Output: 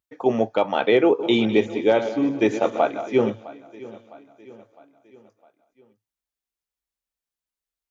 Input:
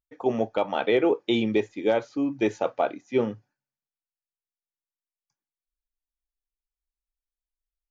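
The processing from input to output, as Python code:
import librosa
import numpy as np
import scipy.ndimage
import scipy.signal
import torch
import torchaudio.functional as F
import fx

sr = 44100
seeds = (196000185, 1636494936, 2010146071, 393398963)

y = fx.reverse_delay_fb(x, sr, ms=103, feedback_pct=59, wet_db=-10.5, at=(1.06, 3.3))
y = scipy.signal.sosfilt(scipy.signal.butter(2, 82.0, 'highpass', fs=sr, output='sos'), y)
y = fx.echo_feedback(y, sr, ms=658, feedback_pct=50, wet_db=-19.5)
y = y * librosa.db_to_amplitude(4.5)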